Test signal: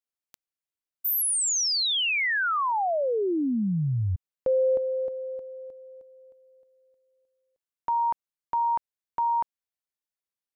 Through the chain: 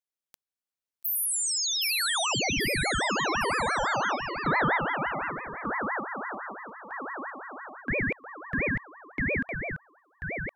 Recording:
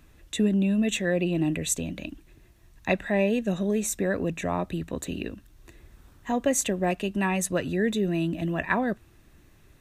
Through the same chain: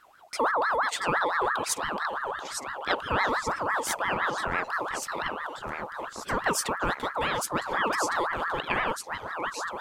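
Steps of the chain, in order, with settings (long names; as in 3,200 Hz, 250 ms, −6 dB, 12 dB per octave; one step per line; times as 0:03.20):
delay with pitch and tempo change per echo 643 ms, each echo −2 semitones, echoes 3, each echo −6 dB
ring modulator whose carrier an LFO sweeps 1,100 Hz, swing 40%, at 5.9 Hz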